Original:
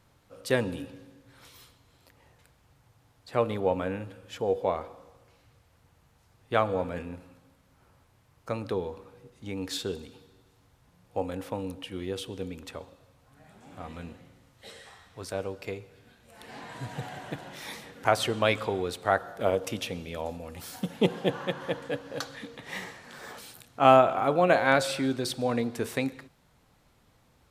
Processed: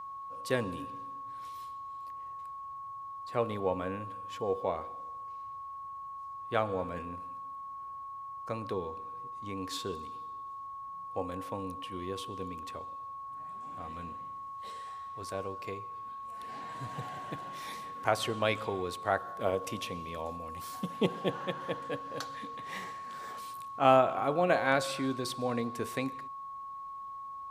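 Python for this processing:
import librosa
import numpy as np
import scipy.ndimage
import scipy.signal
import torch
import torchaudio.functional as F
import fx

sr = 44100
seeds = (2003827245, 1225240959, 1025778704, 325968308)

y = x + 10.0 ** (-35.0 / 20.0) * np.sin(2.0 * np.pi * 1100.0 * np.arange(len(x)) / sr)
y = y * librosa.db_to_amplitude(-5.0)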